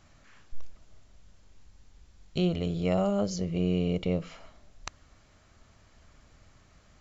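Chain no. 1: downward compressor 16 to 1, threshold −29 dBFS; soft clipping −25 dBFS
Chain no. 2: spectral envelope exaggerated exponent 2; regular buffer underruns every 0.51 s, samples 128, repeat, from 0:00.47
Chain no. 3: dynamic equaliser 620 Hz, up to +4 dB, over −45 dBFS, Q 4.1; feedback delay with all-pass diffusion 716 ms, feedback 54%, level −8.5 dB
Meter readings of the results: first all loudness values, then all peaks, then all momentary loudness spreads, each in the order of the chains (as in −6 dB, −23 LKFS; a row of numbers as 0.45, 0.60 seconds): −37.0, −29.5, −30.0 LKFS; −25.0, −16.0, −13.0 dBFS; 16, 20, 21 LU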